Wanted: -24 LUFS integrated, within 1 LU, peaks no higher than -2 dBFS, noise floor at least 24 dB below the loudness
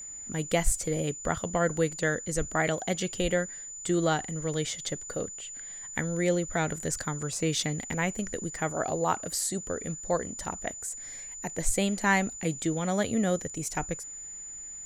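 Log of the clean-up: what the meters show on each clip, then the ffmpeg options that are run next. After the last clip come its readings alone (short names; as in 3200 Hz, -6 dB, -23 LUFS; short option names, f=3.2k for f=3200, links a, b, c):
steady tone 7000 Hz; tone level -39 dBFS; loudness -30.0 LUFS; peak -12.0 dBFS; loudness target -24.0 LUFS
-> -af "bandreject=f=7k:w=30"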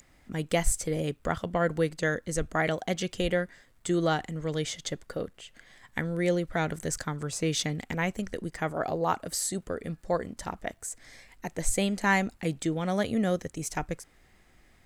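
steady tone none; loudness -30.5 LUFS; peak -12.0 dBFS; loudness target -24.0 LUFS
-> -af "volume=6.5dB"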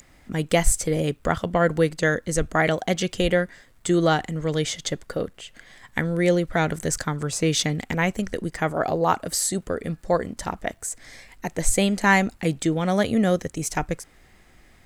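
loudness -24.0 LUFS; peak -5.5 dBFS; noise floor -55 dBFS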